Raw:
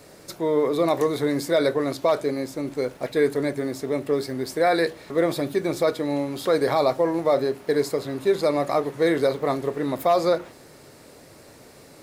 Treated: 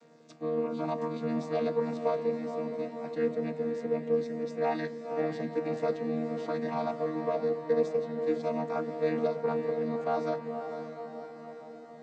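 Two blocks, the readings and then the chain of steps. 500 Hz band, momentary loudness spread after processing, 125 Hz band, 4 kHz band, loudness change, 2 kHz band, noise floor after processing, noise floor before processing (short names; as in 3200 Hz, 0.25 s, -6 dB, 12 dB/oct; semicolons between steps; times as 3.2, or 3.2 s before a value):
-8.0 dB, 8 LU, -7.5 dB, -17.5 dB, -8.5 dB, -12.5 dB, -47 dBFS, -49 dBFS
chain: chord vocoder bare fifth, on D#3; low shelf 330 Hz -8.5 dB; diffused feedback echo 0.537 s, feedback 60%, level -7.5 dB; gain -5 dB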